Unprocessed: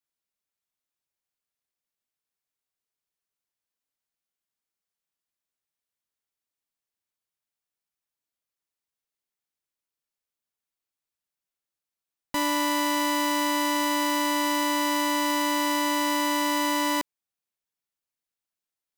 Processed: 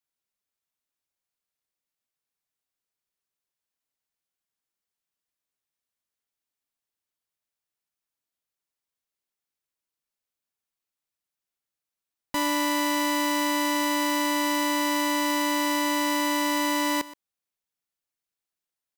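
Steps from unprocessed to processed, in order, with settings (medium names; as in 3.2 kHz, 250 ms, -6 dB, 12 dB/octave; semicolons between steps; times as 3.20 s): delay 123 ms -18 dB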